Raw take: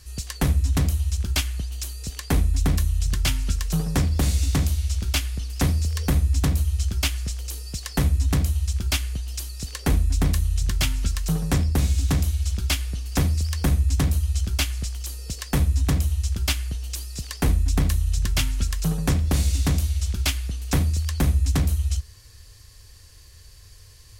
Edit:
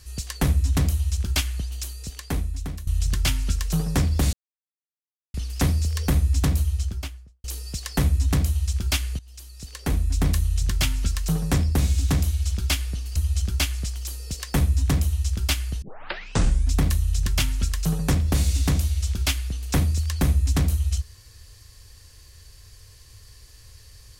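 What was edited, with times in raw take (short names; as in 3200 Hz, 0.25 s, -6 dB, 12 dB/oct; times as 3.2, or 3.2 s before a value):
1.7–2.87 fade out, to -16 dB
4.33–5.34 mute
6.57–7.44 studio fade out
9.19–10.32 fade in, from -18.5 dB
13.16–14.15 cut
16.81 tape start 0.91 s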